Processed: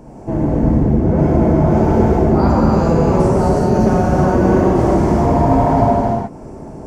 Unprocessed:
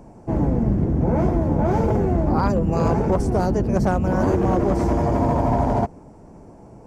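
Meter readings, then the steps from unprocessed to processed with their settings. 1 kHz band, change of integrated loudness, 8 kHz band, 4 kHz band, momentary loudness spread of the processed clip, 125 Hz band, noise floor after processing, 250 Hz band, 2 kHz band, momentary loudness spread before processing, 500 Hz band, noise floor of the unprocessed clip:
+7.0 dB, +6.5 dB, can't be measured, +6.5 dB, 6 LU, +6.0 dB, −34 dBFS, +7.5 dB, +6.0 dB, 1 LU, +7.0 dB, −45 dBFS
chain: parametric band 380 Hz +2 dB
reverb whose tail is shaped and stops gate 440 ms flat, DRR −7.5 dB
in parallel at +2.5 dB: downward compressor, threshold −24 dBFS, peak gain reduction 17 dB
on the sum: level −4 dB

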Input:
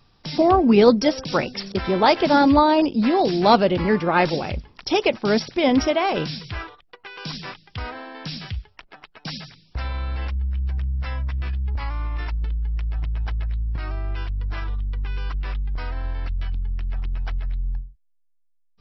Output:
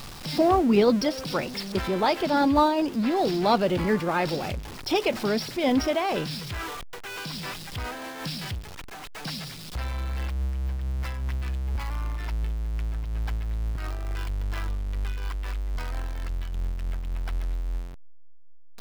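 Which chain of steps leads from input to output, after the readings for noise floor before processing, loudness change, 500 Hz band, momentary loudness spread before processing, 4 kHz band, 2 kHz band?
−62 dBFS, −5.5 dB, −5.5 dB, 17 LU, −4.0 dB, −5.0 dB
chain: converter with a step at zero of −27 dBFS
amplitude modulation by smooth noise, depth 50%
level −3.5 dB

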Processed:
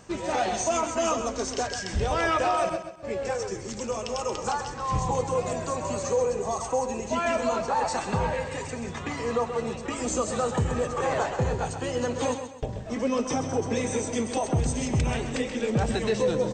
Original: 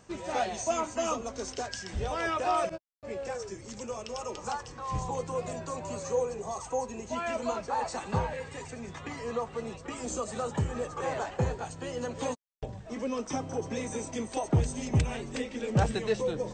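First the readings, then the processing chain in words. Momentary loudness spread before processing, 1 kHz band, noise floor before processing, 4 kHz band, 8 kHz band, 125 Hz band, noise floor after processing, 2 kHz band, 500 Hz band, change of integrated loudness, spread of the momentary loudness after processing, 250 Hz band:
10 LU, +5.5 dB, −47 dBFS, +6.0 dB, +6.5 dB, +2.5 dB, −37 dBFS, +6.0 dB, +6.0 dB, +5.5 dB, 6 LU, +5.5 dB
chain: brickwall limiter −23 dBFS, peak gain reduction 8.5 dB
on a send: repeating echo 131 ms, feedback 34%, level −9 dB
on the sum: level +6.5 dB

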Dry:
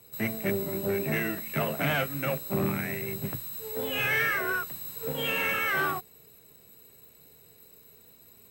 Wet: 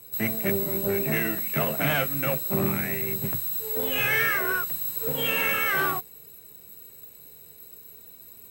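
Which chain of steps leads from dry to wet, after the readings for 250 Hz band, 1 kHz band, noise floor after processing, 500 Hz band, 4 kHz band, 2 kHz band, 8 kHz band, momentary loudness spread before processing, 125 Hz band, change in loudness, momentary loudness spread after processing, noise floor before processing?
+2.0 dB, +2.0 dB, −49 dBFS, +2.0 dB, +3.0 dB, +2.5 dB, +6.0 dB, 8 LU, +2.0 dB, +4.5 dB, 21 LU, −56 dBFS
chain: high-shelf EQ 8,500 Hz +8.5 dB
level +2 dB

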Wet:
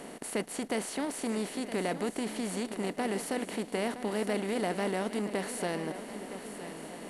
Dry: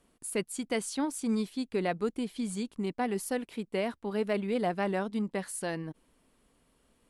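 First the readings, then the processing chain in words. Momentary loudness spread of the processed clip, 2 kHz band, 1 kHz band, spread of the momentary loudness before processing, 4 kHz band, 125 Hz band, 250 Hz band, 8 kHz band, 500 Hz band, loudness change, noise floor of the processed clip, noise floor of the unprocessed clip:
9 LU, +1.0 dB, 0.0 dB, 5 LU, +2.0 dB, −1.5 dB, −1.5 dB, +0.5 dB, −0.5 dB, −1.0 dB, −45 dBFS, −71 dBFS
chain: compressor on every frequency bin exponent 0.4
feedback echo with a long and a short gap by turns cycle 1,288 ms, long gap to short 3 to 1, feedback 32%, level −12 dB
level −6 dB

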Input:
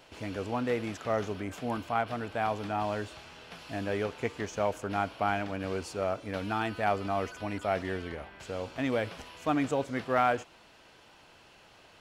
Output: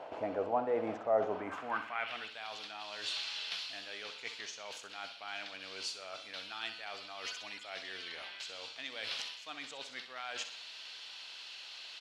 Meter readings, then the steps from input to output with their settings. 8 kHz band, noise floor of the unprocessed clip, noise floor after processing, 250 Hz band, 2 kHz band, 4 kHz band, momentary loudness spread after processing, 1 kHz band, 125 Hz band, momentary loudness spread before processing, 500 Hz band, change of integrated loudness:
0.0 dB, −57 dBFS, −50 dBFS, −14.0 dB, −4.5 dB, +6.0 dB, 11 LU, −9.5 dB, −21.5 dB, 9 LU, −7.0 dB, −7.0 dB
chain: reversed playback
downward compressor 6 to 1, threshold −40 dBFS, peak gain reduction 18 dB
reversed playback
band-pass filter sweep 690 Hz → 4,000 Hz, 0:01.26–0:02.35
repeating echo 63 ms, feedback 44%, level −11 dB
level +17 dB

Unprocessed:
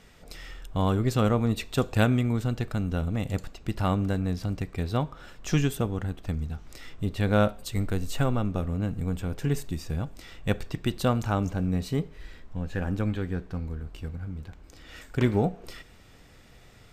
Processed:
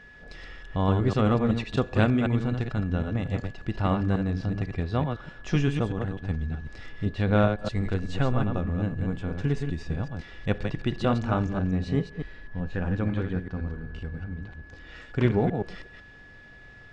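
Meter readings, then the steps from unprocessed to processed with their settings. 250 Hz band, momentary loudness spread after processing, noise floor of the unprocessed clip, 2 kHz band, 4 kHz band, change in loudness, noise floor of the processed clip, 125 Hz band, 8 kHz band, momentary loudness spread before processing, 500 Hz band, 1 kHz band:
+1.5 dB, 14 LU, −52 dBFS, +1.5 dB, −2.0 dB, +1.0 dB, −49 dBFS, +1.0 dB, below −10 dB, 15 LU, +1.0 dB, +1.0 dB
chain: delay that plays each chunk backwards 126 ms, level −5 dB
steady tone 1,700 Hz −48 dBFS
Gaussian smoothing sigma 1.7 samples

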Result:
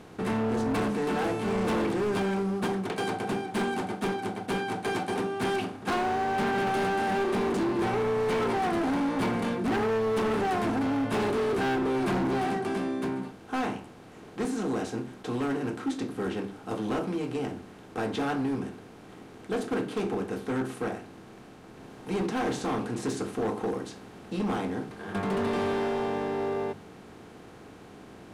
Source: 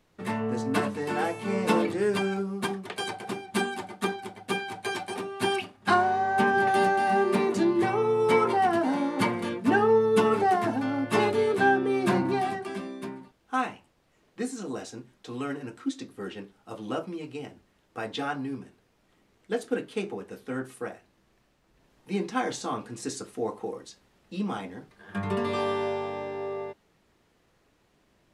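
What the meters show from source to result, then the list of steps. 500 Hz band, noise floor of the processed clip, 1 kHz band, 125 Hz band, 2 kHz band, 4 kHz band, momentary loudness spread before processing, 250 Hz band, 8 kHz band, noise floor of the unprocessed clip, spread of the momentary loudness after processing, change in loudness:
−1.5 dB, −49 dBFS, −3.5 dB, +2.0 dB, −3.5 dB, −2.0 dB, 16 LU, +1.0 dB, −2.0 dB, −67 dBFS, 17 LU, −2.0 dB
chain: compressor on every frequency bin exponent 0.6
low-shelf EQ 430 Hz +9 dB
mains-hum notches 50/100/150/200/250/300/350 Hz
hard clipping −18 dBFS, distortion −9 dB
level −6.5 dB

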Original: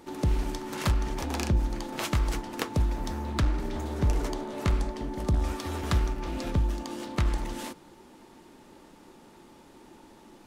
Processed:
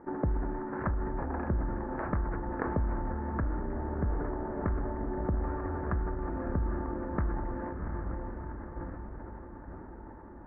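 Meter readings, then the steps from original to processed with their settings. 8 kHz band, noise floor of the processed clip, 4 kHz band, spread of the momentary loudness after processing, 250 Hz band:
below −40 dB, −47 dBFS, below −40 dB, 12 LU, −1.5 dB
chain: elliptic low-pass filter 1,700 Hz, stop band 50 dB
feedback delay with all-pass diffusion 720 ms, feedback 54%, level −8.5 dB
downward compressor 3 to 1, threshold −32 dBFS, peak gain reduction 9 dB
transient designer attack +4 dB, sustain −1 dB
level that may fall only so fast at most 28 dB per second

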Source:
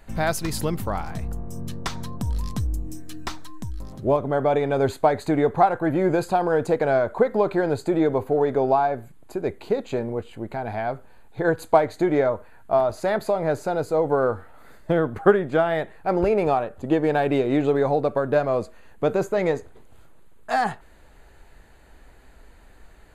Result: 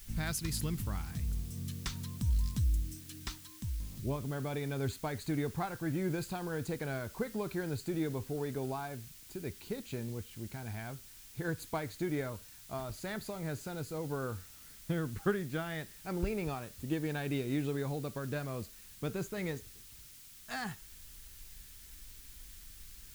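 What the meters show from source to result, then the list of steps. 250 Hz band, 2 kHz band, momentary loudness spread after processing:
−12.0 dB, −12.0 dB, 16 LU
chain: bit-depth reduction 8 bits, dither triangular
guitar amp tone stack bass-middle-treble 6-0-2
level +8.5 dB

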